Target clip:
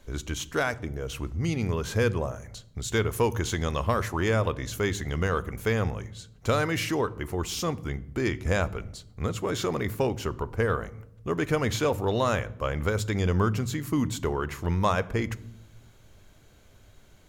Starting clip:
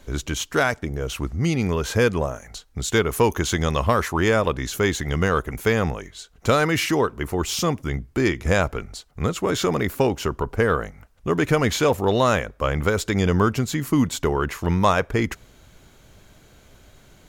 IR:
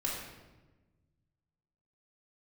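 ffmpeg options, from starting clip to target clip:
-filter_complex "[0:a]asplit=2[s0][s1];[s1]equalizer=f=110:t=o:w=0.23:g=12[s2];[1:a]atrim=start_sample=2205,asetrate=79380,aresample=44100,lowshelf=f=210:g=8.5[s3];[s2][s3]afir=irnorm=-1:irlink=0,volume=0.188[s4];[s0][s4]amix=inputs=2:normalize=0,volume=0.422"

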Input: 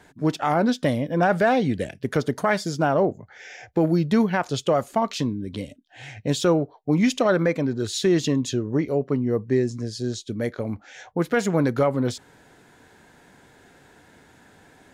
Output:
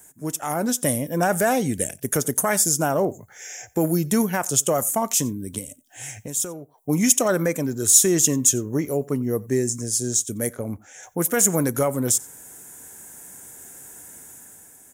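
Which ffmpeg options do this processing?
-filter_complex "[0:a]asettb=1/sr,asplit=3[s0][s1][s2];[s0]atrim=end=5.584[s3];[s1]atrim=start=5.58:end=6.78,asetpts=PTS-STARTPTS,afade=t=in:d=0.004:c=qsin,afade=t=out:st=1.196:d=0.004:c=qsin,acompressor=threshold=0.0224:ratio=5[s4];[s2]atrim=start=6.776[s5];[s3][s4]acrossfade=d=0.004:c1=hsin:c2=qsin[s6];[s6][s5]acrossfade=d=0.004:c1=qsin:c2=hsin,asettb=1/sr,asplit=3[s7][s8][s9];[s7]atrim=end=10.524[s10];[s8]atrim=start=10.52:end=11.03,asetpts=PTS-STARTPTS,afade=t=in:d=0.004:c=qsin,afade=t=out:st=0.506:d=0.004:c=qsin,highshelf=f=2600:g=-10.5[s11];[s9]atrim=start=11.026[s12];[s10][s11]acrossfade=d=0.004:c1=hsin:c2=qsin[s13];[s13][s12]acrossfade=d=0.004:c1=qsin:c2=hsin,dynaudnorm=f=140:g=9:m=2.24,aecho=1:1:90:0.0631,aexciter=amount=14.5:drive=8.5:freq=6600,volume=0.422"

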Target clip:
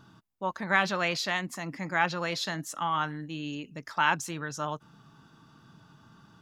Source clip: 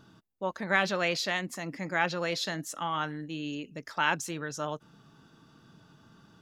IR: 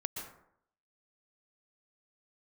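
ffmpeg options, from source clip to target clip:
-af "equalizer=f=125:t=o:w=1:g=3,equalizer=f=500:t=o:w=1:g=-4,equalizer=f=1000:t=o:w=1:g=5"

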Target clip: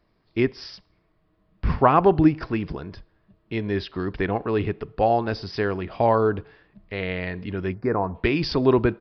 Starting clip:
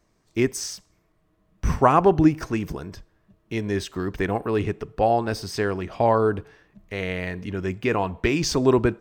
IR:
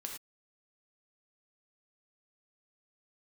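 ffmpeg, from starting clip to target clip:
-filter_complex "[0:a]asplit=3[s0][s1][s2];[s0]afade=t=out:st=7.73:d=0.02[s3];[s1]asuperstop=centerf=3100:order=4:qfactor=0.71,afade=t=in:st=7.73:d=0.02,afade=t=out:st=8.14:d=0.02[s4];[s2]afade=t=in:st=8.14:d=0.02[s5];[s3][s4][s5]amix=inputs=3:normalize=0,aresample=11025,aresample=44100"

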